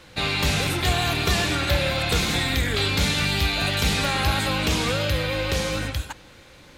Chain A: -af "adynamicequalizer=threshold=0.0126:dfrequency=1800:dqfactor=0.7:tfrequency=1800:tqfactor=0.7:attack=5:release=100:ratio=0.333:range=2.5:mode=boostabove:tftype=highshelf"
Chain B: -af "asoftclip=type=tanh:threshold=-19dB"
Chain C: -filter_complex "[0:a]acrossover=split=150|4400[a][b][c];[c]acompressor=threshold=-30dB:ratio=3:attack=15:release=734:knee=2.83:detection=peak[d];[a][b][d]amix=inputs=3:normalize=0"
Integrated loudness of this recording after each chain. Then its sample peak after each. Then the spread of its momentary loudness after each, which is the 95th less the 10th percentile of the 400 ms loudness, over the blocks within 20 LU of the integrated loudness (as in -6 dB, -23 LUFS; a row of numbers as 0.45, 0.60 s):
-19.5, -25.0, -22.5 LUFS; -8.0, -19.0, -8.5 dBFS; 4, 3, 4 LU